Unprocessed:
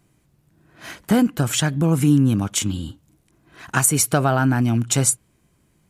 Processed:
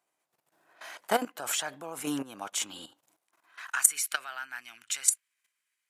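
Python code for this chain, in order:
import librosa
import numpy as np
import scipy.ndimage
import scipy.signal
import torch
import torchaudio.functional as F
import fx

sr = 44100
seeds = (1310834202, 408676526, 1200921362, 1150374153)

y = fx.level_steps(x, sr, step_db=15)
y = fx.filter_sweep_highpass(y, sr, from_hz=700.0, to_hz=1900.0, start_s=3.06, end_s=4.03, q=1.6)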